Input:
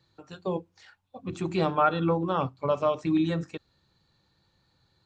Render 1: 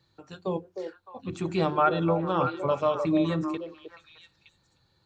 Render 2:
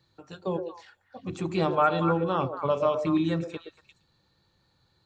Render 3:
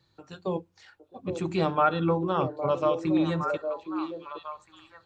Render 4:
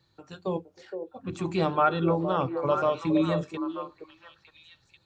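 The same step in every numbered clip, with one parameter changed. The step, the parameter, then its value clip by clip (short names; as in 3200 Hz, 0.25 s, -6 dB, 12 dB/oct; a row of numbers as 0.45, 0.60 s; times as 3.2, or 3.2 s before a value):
delay with a stepping band-pass, time: 0.306, 0.117, 0.812, 0.466 s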